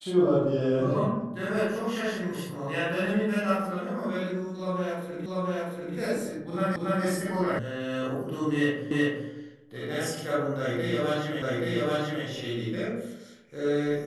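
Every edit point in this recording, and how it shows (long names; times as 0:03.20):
0:05.26: the same again, the last 0.69 s
0:06.76: the same again, the last 0.28 s
0:07.59: cut off before it has died away
0:08.91: the same again, the last 0.38 s
0:11.42: the same again, the last 0.83 s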